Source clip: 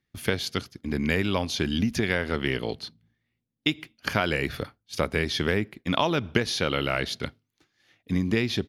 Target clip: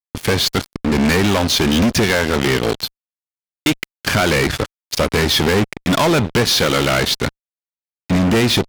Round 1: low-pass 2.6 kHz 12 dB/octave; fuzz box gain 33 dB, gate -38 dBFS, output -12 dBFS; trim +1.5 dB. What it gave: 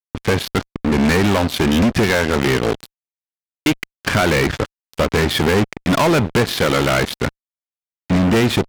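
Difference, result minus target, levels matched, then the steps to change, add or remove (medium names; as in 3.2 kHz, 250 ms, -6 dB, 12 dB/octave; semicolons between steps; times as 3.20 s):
8 kHz band -4.5 dB
change: low-pass 10 kHz 12 dB/octave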